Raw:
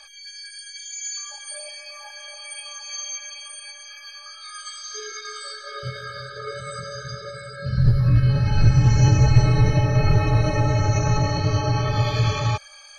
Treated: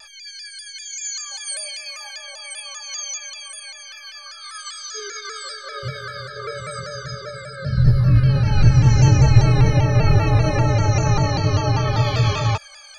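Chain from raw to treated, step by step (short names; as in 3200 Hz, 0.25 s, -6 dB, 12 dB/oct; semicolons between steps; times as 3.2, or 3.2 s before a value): 1.31–2.18 tilt shelf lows -5 dB, about 1400 Hz; shaped vibrato saw down 5.1 Hz, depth 100 cents; gain +2.5 dB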